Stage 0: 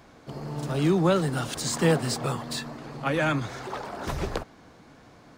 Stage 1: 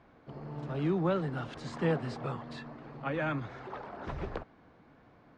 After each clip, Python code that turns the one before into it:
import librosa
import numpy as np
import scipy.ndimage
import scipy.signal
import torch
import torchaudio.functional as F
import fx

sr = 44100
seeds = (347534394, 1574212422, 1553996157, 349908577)

y = scipy.signal.sosfilt(scipy.signal.butter(2, 2500.0, 'lowpass', fs=sr, output='sos'), x)
y = F.gain(torch.from_numpy(y), -7.5).numpy()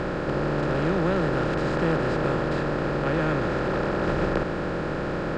y = fx.bin_compress(x, sr, power=0.2)
y = fx.low_shelf(y, sr, hz=81.0, db=8.5)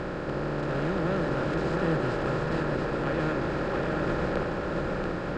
y = x + 10.0 ** (-3.5 / 20.0) * np.pad(x, (int(684 * sr / 1000.0), 0))[:len(x)]
y = F.gain(torch.from_numpy(y), -5.0).numpy()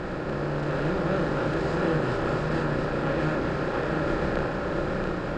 y = fx.doubler(x, sr, ms=33.0, db=-3.0)